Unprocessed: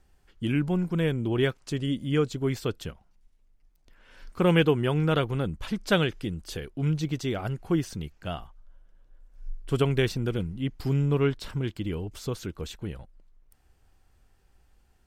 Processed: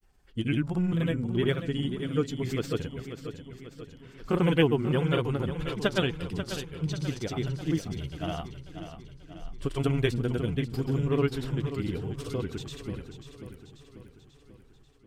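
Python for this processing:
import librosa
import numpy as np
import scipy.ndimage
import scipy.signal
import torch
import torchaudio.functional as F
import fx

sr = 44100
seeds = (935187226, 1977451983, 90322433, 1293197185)

y = fx.spec_quant(x, sr, step_db=15)
y = fx.granulator(y, sr, seeds[0], grain_ms=100.0, per_s=20.0, spray_ms=100.0, spread_st=0)
y = fx.echo_warbled(y, sr, ms=539, feedback_pct=54, rate_hz=2.8, cents=53, wet_db=-10.0)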